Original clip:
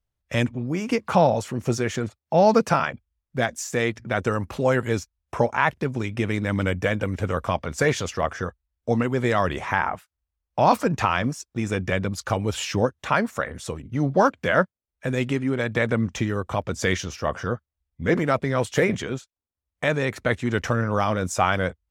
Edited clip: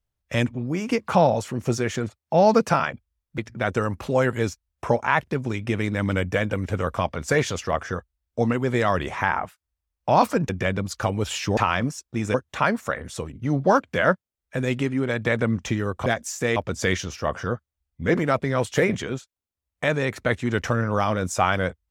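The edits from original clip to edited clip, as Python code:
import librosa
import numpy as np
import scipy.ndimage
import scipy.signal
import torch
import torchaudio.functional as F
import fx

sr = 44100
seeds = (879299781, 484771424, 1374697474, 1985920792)

y = fx.edit(x, sr, fx.move(start_s=3.38, length_s=0.5, to_s=16.56),
    fx.move(start_s=10.99, length_s=0.77, to_s=12.84), tone=tone)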